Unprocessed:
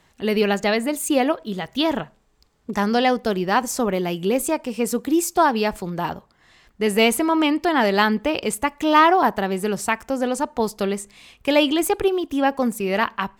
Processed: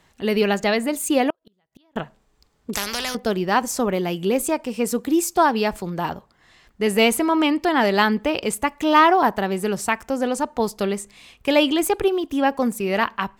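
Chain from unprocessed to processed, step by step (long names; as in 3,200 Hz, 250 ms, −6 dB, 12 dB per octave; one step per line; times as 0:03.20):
0:01.30–0:01.96: gate with flip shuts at −23 dBFS, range −41 dB
0:02.73–0:03.15: every bin compressed towards the loudest bin 4 to 1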